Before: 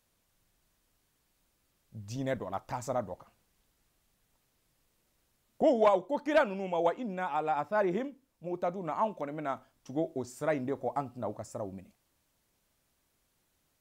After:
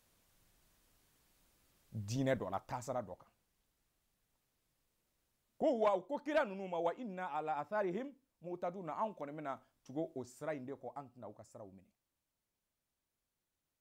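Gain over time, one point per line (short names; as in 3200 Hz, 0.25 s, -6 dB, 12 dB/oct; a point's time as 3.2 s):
1.99 s +1.5 dB
3.02 s -8 dB
10.12 s -8 dB
11 s -14.5 dB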